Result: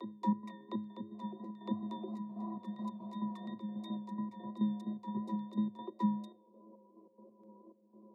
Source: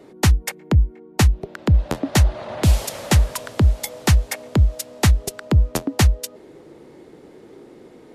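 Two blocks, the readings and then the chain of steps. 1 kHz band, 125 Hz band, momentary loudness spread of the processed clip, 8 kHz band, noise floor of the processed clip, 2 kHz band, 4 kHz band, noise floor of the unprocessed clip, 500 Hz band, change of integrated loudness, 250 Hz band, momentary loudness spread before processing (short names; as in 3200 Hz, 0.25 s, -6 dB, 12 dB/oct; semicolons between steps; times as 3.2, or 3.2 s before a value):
-13.0 dB, -28.5 dB, 9 LU, under -40 dB, -65 dBFS, under -30 dB, -28.5 dB, -46 dBFS, -21.5 dB, -19.5 dB, -9.5 dB, 5 LU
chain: Wiener smoothing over 25 samples; in parallel at -2 dB: limiter -13 dBFS, peak gain reduction 9 dB; on the sum: transient shaper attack +3 dB, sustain +8 dB; compressor, threshold -18 dBFS, peak gain reduction 12 dB; octave resonator A, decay 0.55 s; step gate "x.x.xxx..xx.." 140 bpm -12 dB; vibrato 2.9 Hz 32 cents; fixed phaser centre 310 Hz, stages 8; on a send: reverse echo 0.71 s -6.5 dB; on the sum: frequency shift +100 Hz; gain +6.5 dB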